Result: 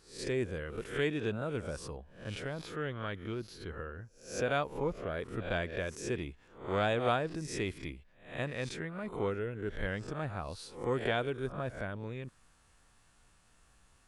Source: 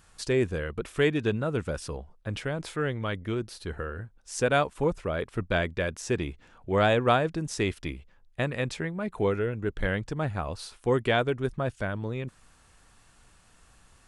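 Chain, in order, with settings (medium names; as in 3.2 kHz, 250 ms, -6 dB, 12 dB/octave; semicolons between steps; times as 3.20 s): reverse spectral sustain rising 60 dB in 0.44 s; 2.54–5.11 s: peaking EQ 8.6 kHz -15 dB 0.21 oct; trim -8.5 dB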